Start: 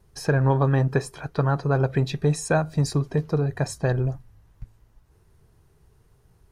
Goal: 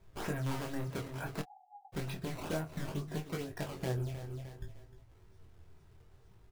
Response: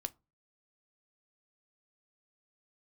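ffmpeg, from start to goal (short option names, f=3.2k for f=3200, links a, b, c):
-filter_complex "[0:a]acrusher=samples=15:mix=1:aa=0.000001:lfo=1:lforange=24:lforate=2.2,volume=18.5dB,asoftclip=hard,volume=-18.5dB,aecho=1:1:305|610|915:0.158|0.0523|0.0173,acompressor=threshold=-32dB:ratio=6[a];[1:a]atrim=start_sample=2205[b];[a][b]afir=irnorm=-1:irlink=0,flanger=delay=18:depth=7.2:speed=0.6,asplit=3[c][d][e];[c]afade=t=out:st=1.41:d=0.02[f];[d]asuperpass=centerf=790:order=12:qfactor=6.8,afade=t=in:st=1.41:d=0.02,afade=t=out:st=1.92:d=0.02[g];[e]afade=t=in:st=1.92:d=0.02[h];[f][g][h]amix=inputs=3:normalize=0,asplit=2[i][j];[j]adelay=26,volume=-12dB[k];[i][k]amix=inputs=2:normalize=0,volume=2dB"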